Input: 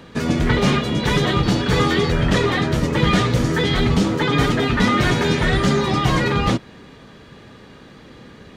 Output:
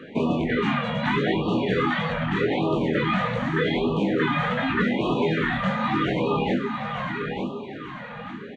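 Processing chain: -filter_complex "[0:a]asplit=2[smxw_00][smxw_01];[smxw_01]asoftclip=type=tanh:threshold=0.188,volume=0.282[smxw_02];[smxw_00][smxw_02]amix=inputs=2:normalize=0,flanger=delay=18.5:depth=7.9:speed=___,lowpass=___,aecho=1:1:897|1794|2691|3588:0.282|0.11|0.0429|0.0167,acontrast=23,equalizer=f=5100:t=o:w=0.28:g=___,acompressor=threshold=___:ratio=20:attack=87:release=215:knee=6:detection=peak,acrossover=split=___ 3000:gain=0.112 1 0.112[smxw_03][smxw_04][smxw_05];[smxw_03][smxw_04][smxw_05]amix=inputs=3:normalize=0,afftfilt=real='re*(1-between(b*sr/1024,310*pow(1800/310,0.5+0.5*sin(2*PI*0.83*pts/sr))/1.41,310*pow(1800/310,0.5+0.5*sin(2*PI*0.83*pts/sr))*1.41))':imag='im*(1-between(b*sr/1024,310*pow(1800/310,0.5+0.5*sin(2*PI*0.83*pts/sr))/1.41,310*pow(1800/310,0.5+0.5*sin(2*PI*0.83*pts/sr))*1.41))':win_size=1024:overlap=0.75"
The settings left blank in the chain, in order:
1.5, 7600, -11, 0.112, 170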